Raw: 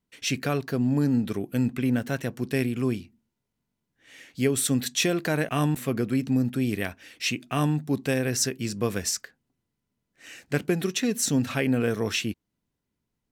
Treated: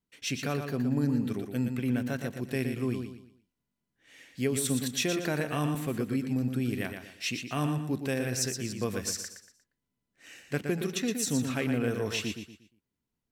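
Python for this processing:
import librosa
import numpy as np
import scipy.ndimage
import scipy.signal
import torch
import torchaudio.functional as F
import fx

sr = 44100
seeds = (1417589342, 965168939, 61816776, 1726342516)

y = fx.echo_feedback(x, sr, ms=118, feedback_pct=33, wet_db=-7.0)
y = y * librosa.db_to_amplitude(-5.5)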